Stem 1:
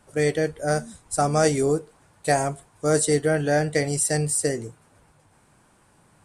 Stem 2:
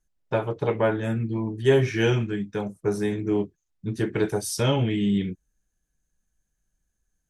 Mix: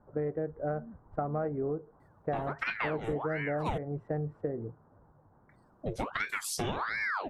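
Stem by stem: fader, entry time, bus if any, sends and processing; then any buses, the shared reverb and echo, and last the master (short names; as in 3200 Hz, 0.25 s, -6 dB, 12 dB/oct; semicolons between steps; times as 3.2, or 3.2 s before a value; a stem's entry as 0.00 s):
-2.5 dB, 0.00 s, no send, Wiener smoothing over 15 samples; LPF 1400 Hz 24 dB/oct
0.0 dB, 2.00 s, muted 3.78–5.49, no send, ring modulator with a swept carrier 1100 Hz, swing 80%, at 1.4 Hz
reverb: off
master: compressor 6:1, threshold -30 dBFS, peak gain reduction 14 dB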